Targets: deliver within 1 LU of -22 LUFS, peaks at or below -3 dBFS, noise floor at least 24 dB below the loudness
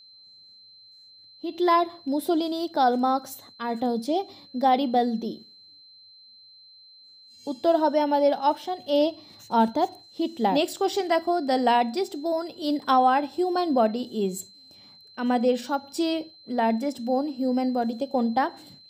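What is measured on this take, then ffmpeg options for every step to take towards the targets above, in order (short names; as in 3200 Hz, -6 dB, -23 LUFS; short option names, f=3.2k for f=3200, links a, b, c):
steady tone 4100 Hz; tone level -49 dBFS; loudness -25.0 LUFS; peak -10.5 dBFS; loudness target -22.0 LUFS
-> -af "bandreject=f=4.1k:w=30"
-af "volume=3dB"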